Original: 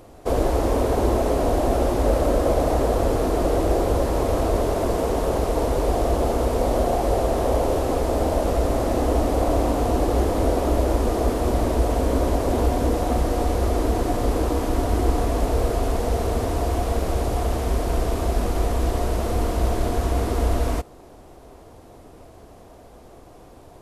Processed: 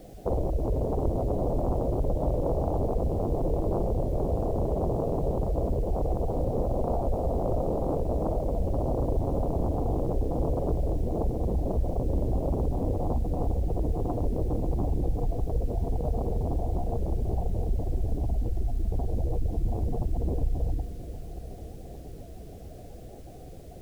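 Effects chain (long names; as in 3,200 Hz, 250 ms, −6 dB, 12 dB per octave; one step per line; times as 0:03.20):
sub-octave generator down 1 octave, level +2 dB
downward compressor 3 to 1, threshold −25 dBFS, peak gain reduction 11 dB
Chebyshev band-stop filter 830–8,500 Hz, order 5
high-shelf EQ 11,000 Hz −10 dB
echo machine with several playback heads 114 ms, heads second and third, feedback 41%, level −19 dB
gate on every frequency bin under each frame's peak −15 dB strong
feedback delay with all-pass diffusion 565 ms, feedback 63%, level −15 dB
bit-depth reduction 10 bits, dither triangular
highs frequency-modulated by the lows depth 0.83 ms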